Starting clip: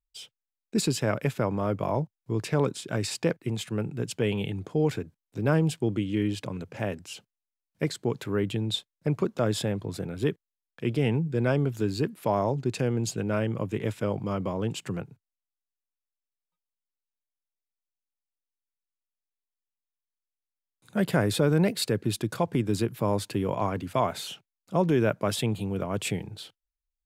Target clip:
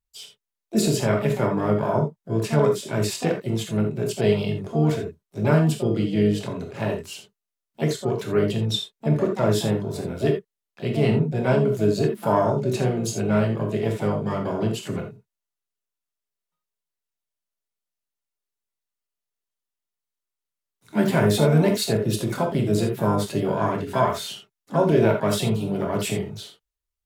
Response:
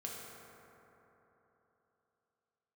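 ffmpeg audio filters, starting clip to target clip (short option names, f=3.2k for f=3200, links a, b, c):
-filter_complex "[0:a]bandreject=f=2.4k:w=26,asplit=2[a][b];[b]asetrate=66075,aresample=44100,atempo=0.66742,volume=-9dB[c];[a][c]amix=inputs=2:normalize=0[d];[1:a]atrim=start_sample=2205,atrim=end_sample=3528,asetrate=39249,aresample=44100[e];[d][e]afir=irnorm=-1:irlink=0,volume=6dB"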